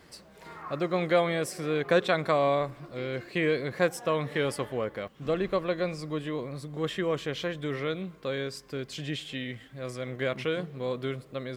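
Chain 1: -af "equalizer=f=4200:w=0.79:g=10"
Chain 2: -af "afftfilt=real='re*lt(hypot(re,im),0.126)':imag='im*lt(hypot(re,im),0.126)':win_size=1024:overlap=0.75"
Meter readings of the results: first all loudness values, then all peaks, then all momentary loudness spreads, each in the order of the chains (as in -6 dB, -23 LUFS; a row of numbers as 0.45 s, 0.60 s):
-28.5 LUFS, -37.5 LUFS; -8.0 dBFS, -18.5 dBFS; 11 LU, 6 LU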